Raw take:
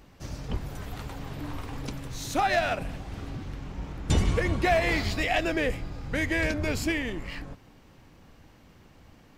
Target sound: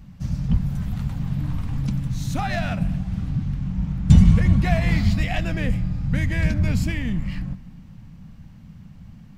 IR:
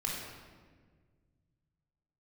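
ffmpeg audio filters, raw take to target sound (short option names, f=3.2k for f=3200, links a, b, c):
-filter_complex "[0:a]lowshelf=f=260:t=q:w=3:g=12,asplit=2[a][b];[1:a]atrim=start_sample=2205,adelay=71[c];[b][c]afir=irnorm=-1:irlink=0,volume=-24dB[d];[a][d]amix=inputs=2:normalize=0,volume=-2dB"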